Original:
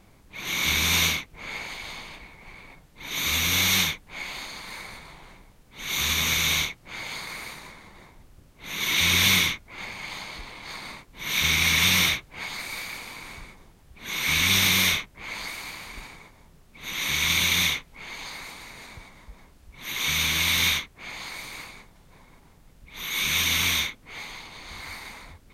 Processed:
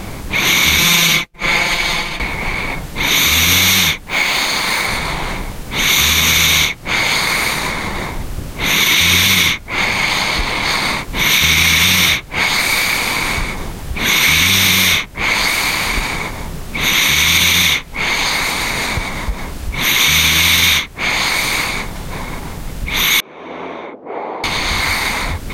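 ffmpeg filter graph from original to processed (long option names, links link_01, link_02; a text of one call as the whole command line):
ffmpeg -i in.wav -filter_complex "[0:a]asettb=1/sr,asplit=3[link_01][link_02][link_03];[link_01]atrim=end=0.784[link_04];[link_02]atrim=start=0.78:end=2.2,asetpts=PTS-STARTPTS,afade=type=in:duration=0.004:curve=qsin,afade=type=out:start_time=1.416:duration=0.004:curve=qsin,agate=range=-33dB:threshold=-35dB:ratio=3:release=100:detection=peak,aecho=1:1:5.8:0.96,atrim=end_sample=62622[link_05];[link_03]atrim=start=2.196[link_06];[link_04][link_05]acrossfade=duration=0.004:curve1=hsin:curve2=qsin[link_07];[link_07][link_06]acrossfade=duration=0.004:curve1=qsin:curve2=hsin,asettb=1/sr,asplit=3[link_08][link_09][link_10];[link_08]atrim=end=4.074[link_11];[link_09]atrim=start=4.07:end=4.87,asetpts=PTS-STARTPTS,afade=type=in:duration=0.004:curve=qsin,afade=type=out:start_time=0.796:duration=0.004:curve=qsin,lowshelf=frequency=120:gain=-7.5,acrusher=bits=5:mode=log:mix=0:aa=0.000001[link_12];[link_10]atrim=start=4.866[link_13];[link_11][link_12]acrossfade=duration=0.004:curve1=hsin:curve2=qsin[link_14];[link_14][link_13]acrossfade=duration=0.004:curve1=qsin:curve2=hsin,asettb=1/sr,asplit=3[link_15][link_16][link_17];[link_15]atrim=end=23.204[link_18];[link_16]atrim=start=23.2:end=24.44,asetpts=PTS-STARTPTS,afade=type=in:duration=0.004:curve=qsin,afade=type=out:start_time=1.236:duration=0.004:curve=qsin,acompressor=threshold=-34dB:ratio=4:attack=3.2:release=140:knee=1:detection=peak,asuperpass=centerf=510:order=4:qfactor=1.1[link_19];[link_17]atrim=start=24.436[link_20];[link_18][link_19]acrossfade=duration=0.004:curve1=hsin:curve2=qsin[link_21];[link_21][link_20]acrossfade=duration=0.004:curve1=qsin:curve2=hsin,acompressor=threshold=-45dB:ratio=2.5,alimiter=level_in=29.5dB:limit=-1dB:release=50:level=0:latency=1,volume=-1dB" out.wav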